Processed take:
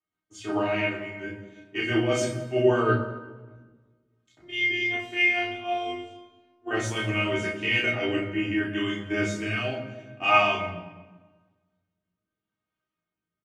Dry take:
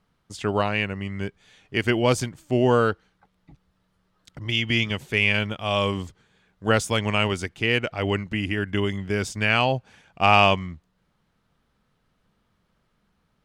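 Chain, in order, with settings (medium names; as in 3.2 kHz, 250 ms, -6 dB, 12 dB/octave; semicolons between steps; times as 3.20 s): bass shelf 130 Hz -7 dB; peak limiter -13.5 dBFS, peak gain reduction 10 dB; rotary cabinet horn 5 Hz, later 0.8 Hz, at 3.44 s; feedback comb 310 Hz, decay 0.2 s, harmonics all, mix 90%; 4.39–6.71 s: robot voice 352 Hz; early reflections 18 ms -4 dB, 34 ms -3.5 dB; reverberation RT60 1.9 s, pre-delay 3 ms, DRR -2 dB; three bands expanded up and down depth 40%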